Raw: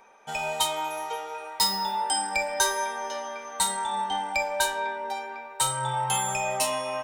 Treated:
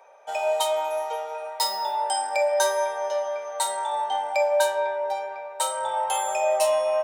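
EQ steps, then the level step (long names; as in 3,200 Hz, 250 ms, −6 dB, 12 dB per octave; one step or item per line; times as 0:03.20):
high-pass with resonance 590 Hz, resonance Q 4.9
−3.0 dB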